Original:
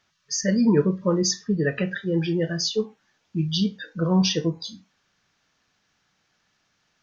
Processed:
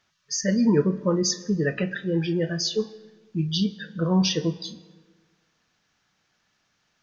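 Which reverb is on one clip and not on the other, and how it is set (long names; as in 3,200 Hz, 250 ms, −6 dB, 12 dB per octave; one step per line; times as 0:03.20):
comb and all-pass reverb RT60 1.6 s, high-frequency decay 0.65×, pre-delay 75 ms, DRR 19.5 dB
level −1 dB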